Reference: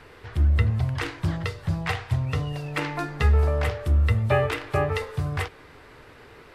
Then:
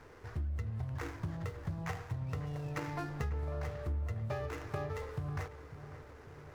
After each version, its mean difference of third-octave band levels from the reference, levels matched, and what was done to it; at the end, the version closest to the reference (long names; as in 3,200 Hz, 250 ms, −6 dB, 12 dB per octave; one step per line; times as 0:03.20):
4.5 dB: running median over 15 samples
downward compressor 6 to 1, threshold −29 dBFS, peak gain reduction 13 dB
on a send: feedback echo with a low-pass in the loop 546 ms, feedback 60%, low-pass 2,100 Hz, level −13 dB
on the sum: level −6 dB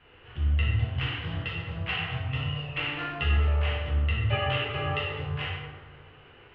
7.0 dB: transistor ladder low-pass 3,100 Hz, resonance 80%
dense smooth reverb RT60 1.7 s, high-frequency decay 0.5×, DRR −7.5 dB
one half of a high-frequency compander decoder only
level −2 dB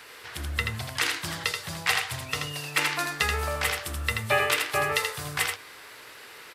10.0 dB: spectral tilt +4.5 dB per octave
mains-hum notches 50/100 Hz
single-tap delay 81 ms −4.5 dB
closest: first